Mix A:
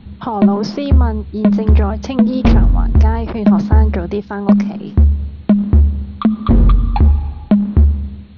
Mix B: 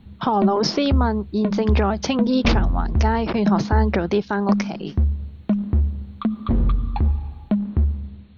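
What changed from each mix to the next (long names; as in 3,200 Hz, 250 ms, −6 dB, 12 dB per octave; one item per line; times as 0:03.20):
speech: add high-shelf EQ 2,400 Hz +7.5 dB
background −9.0 dB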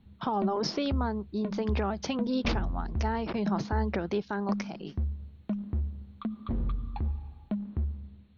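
speech −10.0 dB
background −12.0 dB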